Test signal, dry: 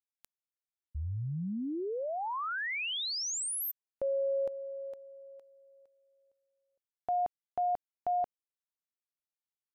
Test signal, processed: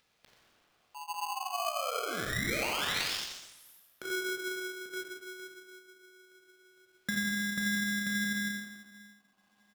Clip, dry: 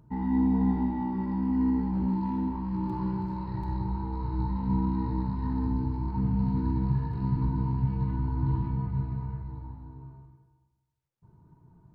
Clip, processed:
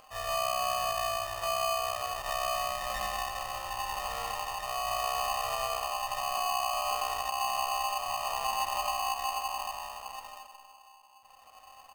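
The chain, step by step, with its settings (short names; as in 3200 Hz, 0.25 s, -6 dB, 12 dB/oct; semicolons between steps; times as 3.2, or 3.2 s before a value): random-step tremolo, depth 70%; air absorption 320 m; feedback echo 87 ms, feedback 24%, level -5 dB; hard clip -20.5 dBFS; HPF 210 Hz 6 dB/oct; shoebox room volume 1000 m³, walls mixed, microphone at 3.4 m; compressor 3:1, threshold -32 dBFS; high shelf 2800 Hz +9.5 dB; upward compressor, threshold -50 dBFS; polarity switched at an audio rate 920 Hz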